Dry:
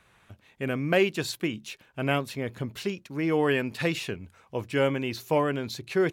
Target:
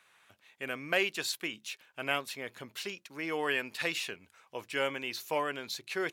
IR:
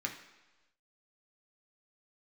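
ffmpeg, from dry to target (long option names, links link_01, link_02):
-af "highpass=frequency=1300:poles=1"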